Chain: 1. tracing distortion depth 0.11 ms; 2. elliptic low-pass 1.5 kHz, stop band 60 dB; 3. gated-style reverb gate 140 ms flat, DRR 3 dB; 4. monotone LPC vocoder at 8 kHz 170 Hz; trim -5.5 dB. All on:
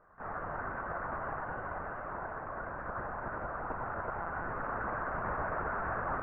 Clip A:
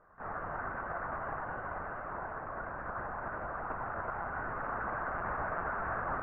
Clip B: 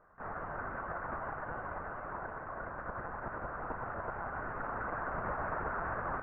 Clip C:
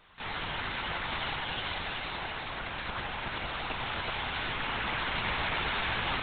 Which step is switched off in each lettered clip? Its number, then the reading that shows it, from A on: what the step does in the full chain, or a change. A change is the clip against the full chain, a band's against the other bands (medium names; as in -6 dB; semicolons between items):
1, 2 kHz band +1.5 dB; 3, loudness change -2.0 LU; 2, 2 kHz band +5.0 dB